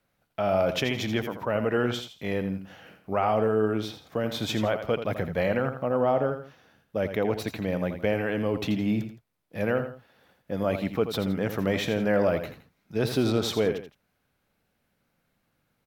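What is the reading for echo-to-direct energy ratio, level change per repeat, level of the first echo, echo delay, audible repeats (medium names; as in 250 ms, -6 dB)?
-9.0 dB, -9.0 dB, -9.5 dB, 83 ms, 2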